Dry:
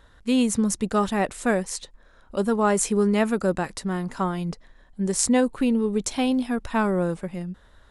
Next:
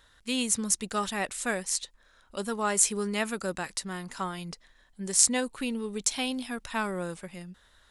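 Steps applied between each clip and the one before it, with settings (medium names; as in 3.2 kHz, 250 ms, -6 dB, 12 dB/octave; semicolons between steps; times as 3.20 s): tilt shelf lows -7.5 dB, about 1.4 kHz; trim -4 dB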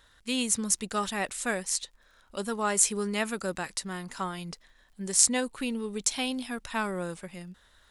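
crackle 54 per s -54 dBFS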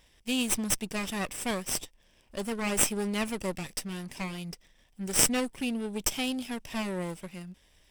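comb filter that takes the minimum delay 0.37 ms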